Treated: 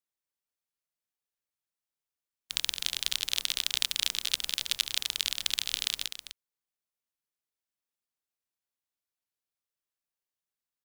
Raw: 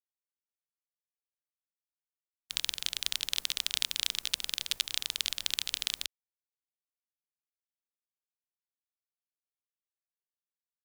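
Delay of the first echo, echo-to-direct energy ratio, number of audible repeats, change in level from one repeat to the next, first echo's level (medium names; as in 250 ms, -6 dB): 253 ms, -10.5 dB, 1, no regular repeats, -10.5 dB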